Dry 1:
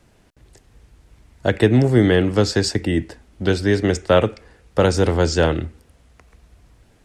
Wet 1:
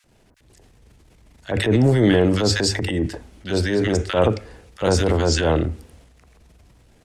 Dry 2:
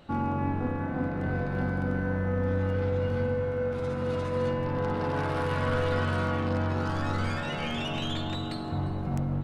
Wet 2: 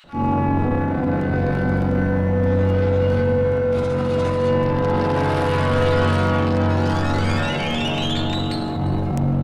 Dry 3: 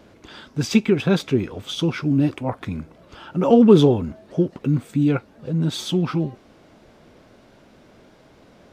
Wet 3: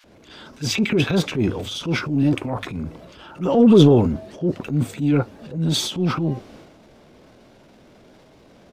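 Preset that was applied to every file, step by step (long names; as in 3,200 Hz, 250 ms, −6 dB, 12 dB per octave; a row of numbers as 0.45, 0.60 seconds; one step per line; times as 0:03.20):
mains-hum notches 50/100 Hz
multiband delay without the direct sound highs, lows 40 ms, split 1,400 Hz
transient designer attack −8 dB, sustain +7 dB
loudness normalisation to −20 LKFS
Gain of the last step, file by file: −0.5, +10.0, +1.0 decibels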